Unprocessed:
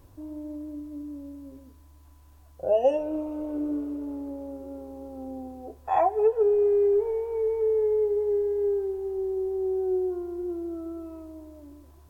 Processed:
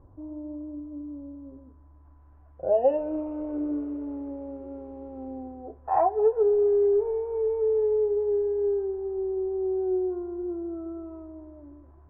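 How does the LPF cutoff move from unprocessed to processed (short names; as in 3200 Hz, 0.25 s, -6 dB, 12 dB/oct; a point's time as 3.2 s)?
LPF 24 dB/oct
1.3 s 1200 Hz
2.7 s 1800 Hz
3.18 s 2400 Hz
5.26 s 2400 Hz
5.66 s 1600 Hz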